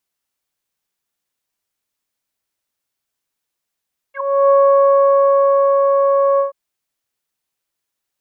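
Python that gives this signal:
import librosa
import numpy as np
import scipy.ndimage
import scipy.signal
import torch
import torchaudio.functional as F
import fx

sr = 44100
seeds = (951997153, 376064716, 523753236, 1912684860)

y = fx.sub_voice(sr, note=73, wave='saw', cutoff_hz=930.0, q=9.2, env_oct=1.5, env_s=0.07, attack_ms=352.0, decay_s=1.32, sustain_db=-3.0, release_s=0.13, note_s=2.25, slope=24)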